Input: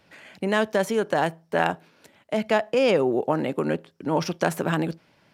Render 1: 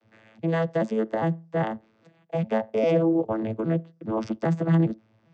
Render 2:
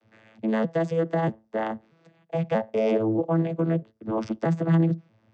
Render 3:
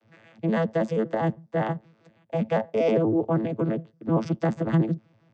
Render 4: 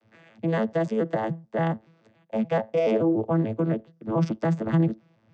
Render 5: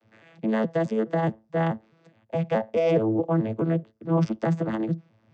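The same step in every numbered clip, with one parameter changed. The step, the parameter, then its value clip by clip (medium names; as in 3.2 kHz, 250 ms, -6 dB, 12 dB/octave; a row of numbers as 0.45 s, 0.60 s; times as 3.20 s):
vocoder on a broken chord, a note every: 404 ms, 635 ms, 80 ms, 143 ms, 212 ms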